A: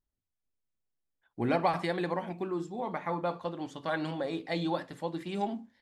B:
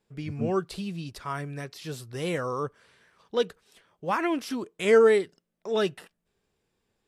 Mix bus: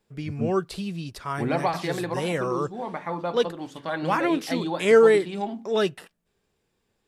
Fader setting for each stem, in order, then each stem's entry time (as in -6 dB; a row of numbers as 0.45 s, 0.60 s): +2.5 dB, +2.5 dB; 0.00 s, 0.00 s